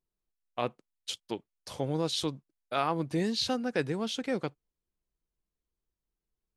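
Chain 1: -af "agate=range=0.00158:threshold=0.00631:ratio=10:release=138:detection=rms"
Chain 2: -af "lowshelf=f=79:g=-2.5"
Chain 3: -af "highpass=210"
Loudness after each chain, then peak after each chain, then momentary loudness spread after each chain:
-33.0 LUFS, -33.0 LUFS, -33.5 LUFS; -15.0 dBFS, -15.0 dBFS, -14.0 dBFS; 11 LU, 11 LU, 11 LU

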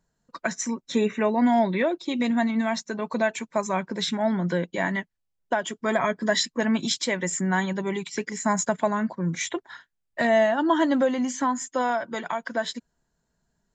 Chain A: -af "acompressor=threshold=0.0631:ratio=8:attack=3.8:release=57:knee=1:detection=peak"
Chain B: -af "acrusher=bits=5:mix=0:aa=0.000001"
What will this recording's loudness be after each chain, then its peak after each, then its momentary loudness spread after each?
-29.0 LUFS, -25.5 LUFS; -13.0 dBFS, -9.0 dBFS; 6 LU, 9 LU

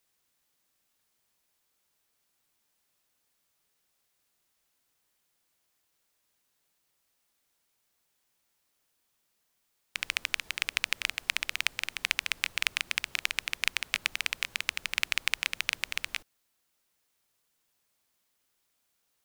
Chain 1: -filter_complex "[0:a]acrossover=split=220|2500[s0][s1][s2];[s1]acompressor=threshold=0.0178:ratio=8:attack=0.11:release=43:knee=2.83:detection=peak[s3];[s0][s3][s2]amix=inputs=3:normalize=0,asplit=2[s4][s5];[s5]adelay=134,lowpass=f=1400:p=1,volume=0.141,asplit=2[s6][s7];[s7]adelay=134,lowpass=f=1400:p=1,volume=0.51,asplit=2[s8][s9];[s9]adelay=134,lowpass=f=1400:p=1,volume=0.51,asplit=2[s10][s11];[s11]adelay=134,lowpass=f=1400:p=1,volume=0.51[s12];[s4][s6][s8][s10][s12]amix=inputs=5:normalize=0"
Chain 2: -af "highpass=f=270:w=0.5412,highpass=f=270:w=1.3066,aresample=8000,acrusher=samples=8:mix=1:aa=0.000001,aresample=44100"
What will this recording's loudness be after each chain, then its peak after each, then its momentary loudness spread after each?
-34.5 LUFS, -34.5 LUFS; -9.0 dBFS, -4.0 dBFS; 4 LU, 8 LU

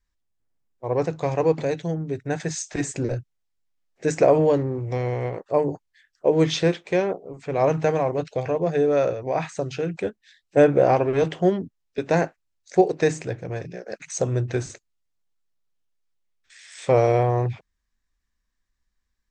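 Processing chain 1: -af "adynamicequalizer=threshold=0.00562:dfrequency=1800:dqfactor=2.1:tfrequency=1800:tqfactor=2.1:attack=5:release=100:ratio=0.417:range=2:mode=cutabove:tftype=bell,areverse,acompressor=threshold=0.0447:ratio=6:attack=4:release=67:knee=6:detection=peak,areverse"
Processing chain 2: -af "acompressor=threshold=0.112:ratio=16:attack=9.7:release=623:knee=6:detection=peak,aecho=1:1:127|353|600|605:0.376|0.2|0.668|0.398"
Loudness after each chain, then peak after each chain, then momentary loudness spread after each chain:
-32.0 LUFS, -26.5 LUFS; -18.0 dBFS, -9.5 dBFS; 8 LU, 8 LU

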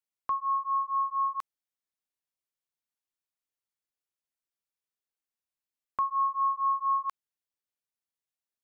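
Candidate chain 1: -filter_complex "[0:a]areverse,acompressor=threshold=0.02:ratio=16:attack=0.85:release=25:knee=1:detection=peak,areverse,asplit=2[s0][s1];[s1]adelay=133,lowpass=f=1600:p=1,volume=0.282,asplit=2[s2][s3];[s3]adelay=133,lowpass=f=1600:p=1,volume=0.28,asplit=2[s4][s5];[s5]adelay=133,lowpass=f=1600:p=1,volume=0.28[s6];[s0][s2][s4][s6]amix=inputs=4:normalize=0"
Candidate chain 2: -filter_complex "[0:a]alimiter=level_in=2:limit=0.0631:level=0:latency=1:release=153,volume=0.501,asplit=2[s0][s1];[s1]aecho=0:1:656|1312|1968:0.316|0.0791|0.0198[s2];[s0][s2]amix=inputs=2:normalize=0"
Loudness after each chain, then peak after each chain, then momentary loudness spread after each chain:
-37.0 LUFS, -35.5 LUFS; -23.5 dBFS, -27.5 dBFS; 7 LU, 22 LU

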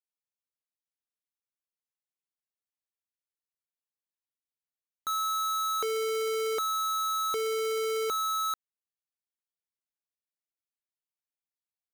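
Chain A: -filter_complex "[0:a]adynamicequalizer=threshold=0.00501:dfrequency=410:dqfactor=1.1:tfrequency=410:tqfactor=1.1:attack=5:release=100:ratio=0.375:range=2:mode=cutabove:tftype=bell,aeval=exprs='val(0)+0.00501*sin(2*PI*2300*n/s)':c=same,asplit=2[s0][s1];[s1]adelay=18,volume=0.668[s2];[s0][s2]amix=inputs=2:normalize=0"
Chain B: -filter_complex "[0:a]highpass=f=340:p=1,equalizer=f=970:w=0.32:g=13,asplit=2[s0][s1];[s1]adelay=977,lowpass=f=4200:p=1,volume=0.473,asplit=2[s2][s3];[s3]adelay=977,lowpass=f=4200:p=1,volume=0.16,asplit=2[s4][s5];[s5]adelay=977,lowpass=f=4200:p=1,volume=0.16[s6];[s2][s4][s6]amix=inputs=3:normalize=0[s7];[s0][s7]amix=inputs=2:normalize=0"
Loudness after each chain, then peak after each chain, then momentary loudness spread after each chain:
-29.0 LUFS, -19.0 LUFS; -23.5 dBFS, -11.5 dBFS; 20 LU, 11 LU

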